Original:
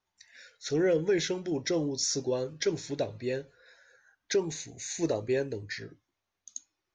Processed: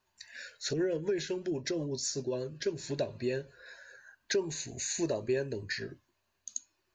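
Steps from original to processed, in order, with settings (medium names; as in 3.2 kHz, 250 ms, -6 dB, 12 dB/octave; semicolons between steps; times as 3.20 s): rippled EQ curve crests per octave 1.4, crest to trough 7 dB; compression 2:1, threshold -41 dBFS, peak gain reduction 11.5 dB; 0.73–2.81 s: rotary cabinet horn 8 Hz; trim +5.5 dB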